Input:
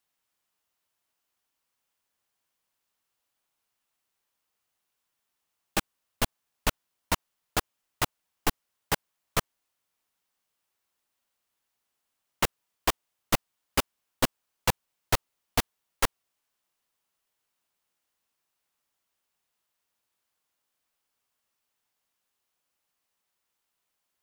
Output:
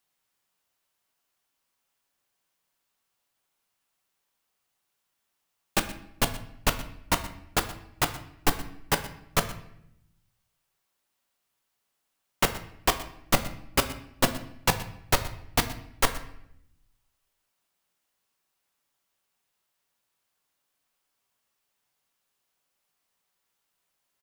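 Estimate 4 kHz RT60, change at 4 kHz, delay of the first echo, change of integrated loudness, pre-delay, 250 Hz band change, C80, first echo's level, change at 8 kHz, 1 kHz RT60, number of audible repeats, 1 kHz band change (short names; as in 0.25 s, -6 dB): 0.55 s, +2.5 dB, 0.122 s, +2.5 dB, 5 ms, +3.0 dB, 14.0 dB, -18.5 dB, +2.5 dB, 0.70 s, 1, +3.0 dB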